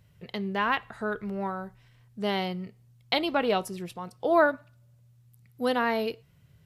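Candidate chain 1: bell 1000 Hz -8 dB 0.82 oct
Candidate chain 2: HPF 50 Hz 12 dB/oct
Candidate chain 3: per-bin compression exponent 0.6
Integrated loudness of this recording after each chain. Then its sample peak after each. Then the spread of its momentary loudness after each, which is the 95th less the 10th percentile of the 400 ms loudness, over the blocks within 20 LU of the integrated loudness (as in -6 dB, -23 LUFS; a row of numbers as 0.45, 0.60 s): -30.5, -29.0, -26.0 LUFS; -11.5, -10.0, -9.0 dBFS; 14, 15, 13 LU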